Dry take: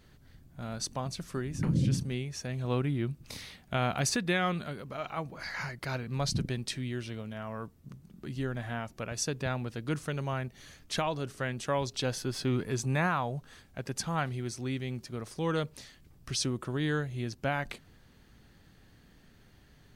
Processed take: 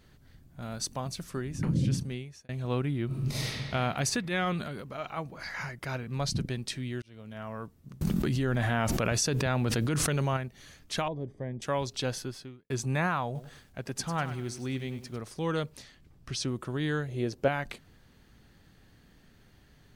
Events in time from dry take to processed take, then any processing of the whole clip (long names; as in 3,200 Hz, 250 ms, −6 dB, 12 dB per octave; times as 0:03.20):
0:00.62–0:01.30: high-shelf EQ 11,000 Hz +8.5 dB
0:02.03–0:02.49: fade out
0:03.06–0:03.47: thrown reverb, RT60 2.1 s, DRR −11 dB
0:04.21–0:04.83: transient designer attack −9 dB, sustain +5 dB
0:05.48–0:06.13: notch filter 4,300 Hz, Q 5.5
0:07.02–0:07.43: fade in
0:08.01–0:10.37: envelope flattener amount 100%
0:11.08–0:11.62: moving average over 32 samples
0:12.18–0:12.70: fade out quadratic
0:13.25–0:15.18: feedback echo at a low word length 99 ms, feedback 35%, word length 9 bits, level −12 dB
0:15.82–0:16.48: high-shelf EQ 7,300 Hz −9 dB
0:17.08–0:17.48: parametric band 470 Hz +12 dB 1.2 octaves